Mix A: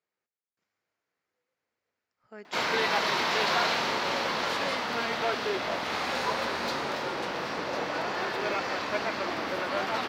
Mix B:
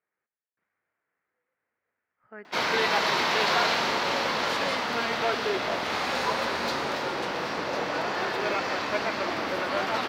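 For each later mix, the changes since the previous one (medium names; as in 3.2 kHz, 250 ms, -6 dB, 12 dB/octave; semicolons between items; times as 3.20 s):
speech: add resonant low-pass 1.8 kHz, resonance Q 1.9; background: send +10.0 dB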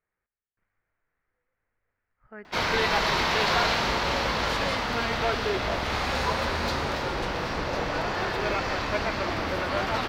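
master: remove high-pass 210 Hz 12 dB/octave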